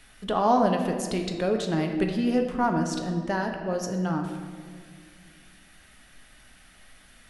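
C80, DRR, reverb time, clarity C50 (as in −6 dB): 7.0 dB, 3.0 dB, 1.9 s, 5.5 dB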